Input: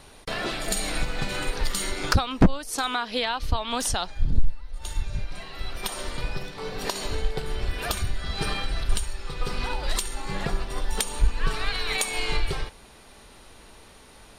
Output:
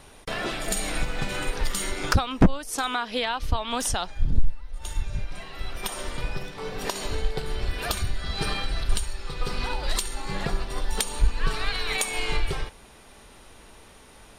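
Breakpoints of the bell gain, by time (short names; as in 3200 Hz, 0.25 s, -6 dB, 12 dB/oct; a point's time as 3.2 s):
bell 4300 Hz 0.27 oct
6.86 s -5.5 dB
7.36 s +2 dB
11.54 s +2 dB
12.12 s -4.5 dB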